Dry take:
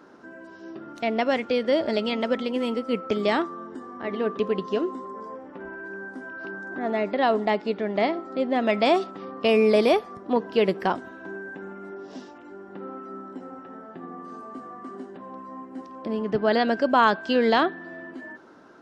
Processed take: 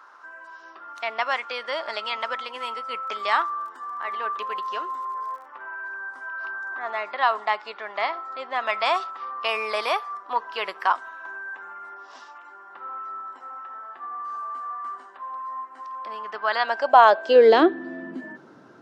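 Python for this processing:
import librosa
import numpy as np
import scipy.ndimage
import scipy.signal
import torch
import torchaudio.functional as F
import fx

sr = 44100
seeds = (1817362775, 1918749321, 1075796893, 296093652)

y = fx.dmg_crackle(x, sr, seeds[0], per_s=fx.line((3.01, 24.0), (5.44, 72.0)), level_db=-43.0, at=(3.01, 5.44), fade=0.02)
y = fx.filter_sweep_highpass(y, sr, from_hz=1100.0, to_hz=110.0, start_s=16.58, end_s=18.64, q=3.2)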